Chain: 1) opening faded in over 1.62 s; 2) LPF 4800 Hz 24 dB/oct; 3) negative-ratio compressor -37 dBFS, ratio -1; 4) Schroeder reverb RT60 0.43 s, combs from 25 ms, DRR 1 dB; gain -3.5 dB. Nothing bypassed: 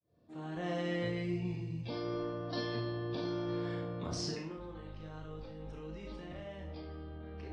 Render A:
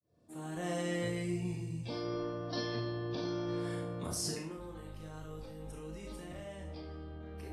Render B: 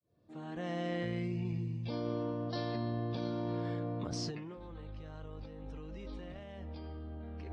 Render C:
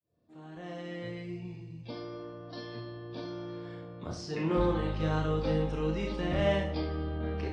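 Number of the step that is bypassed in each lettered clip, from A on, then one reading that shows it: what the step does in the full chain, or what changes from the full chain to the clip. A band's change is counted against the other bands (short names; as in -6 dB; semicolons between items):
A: 2, 8 kHz band +8.5 dB; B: 4, 125 Hz band +3.5 dB; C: 3, crest factor change +3.5 dB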